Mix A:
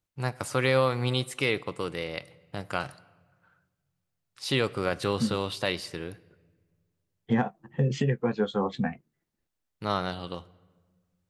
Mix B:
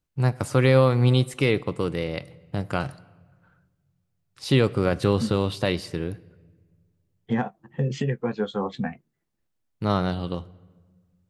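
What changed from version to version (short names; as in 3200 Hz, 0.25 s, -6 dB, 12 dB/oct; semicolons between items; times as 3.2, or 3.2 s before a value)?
first voice: add low shelf 460 Hz +11.5 dB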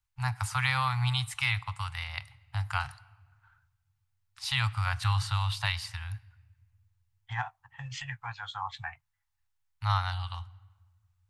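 master: add Chebyshev band-stop 110–830 Hz, order 4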